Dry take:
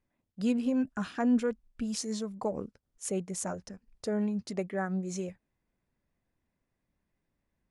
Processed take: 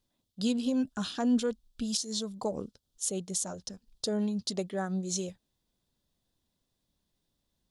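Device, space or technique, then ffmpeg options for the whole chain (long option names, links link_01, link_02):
over-bright horn tweeter: -af "highshelf=frequency=2800:width_type=q:width=3:gain=8,alimiter=limit=-18dB:level=0:latency=1:release=307"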